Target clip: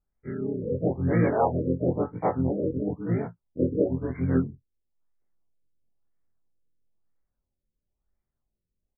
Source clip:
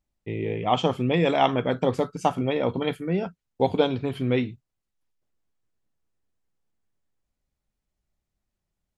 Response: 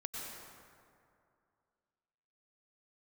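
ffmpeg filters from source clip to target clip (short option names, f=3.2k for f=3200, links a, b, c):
-filter_complex "[0:a]afftfilt=real='re':imag='-im':win_size=2048:overlap=0.75,asplit=2[a][b];[b]asetrate=29433,aresample=44100,atempo=1.49831,volume=-1dB[c];[a][c]amix=inputs=2:normalize=0,afftfilt=real='re*lt(b*sr/1024,550*pow(2400/550,0.5+0.5*sin(2*PI*1*pts/sr)))':imag='im*lt(b*sr/1024,550*pow(2400/550,0.5+0.5*sin(2*PI*1*pts/sr)))':win_size=1024:overlap=0.75"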